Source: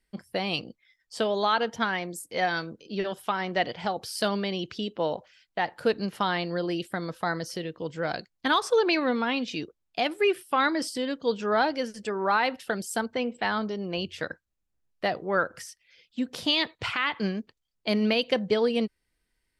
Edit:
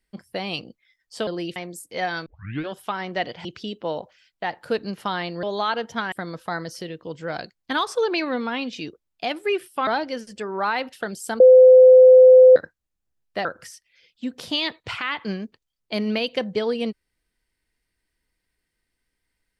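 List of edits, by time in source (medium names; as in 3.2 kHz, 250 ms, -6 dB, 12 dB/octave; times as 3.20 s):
1.27–1.96 s: swap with 6.58–6.87 s
2.66 s: tape start 0.43 s
3.85–4.60 s: delete
10.62–11.54 s: delete
13.07–14.23 s: bleep 512 Hz -6 dBFS
15.12–15.40 s: delete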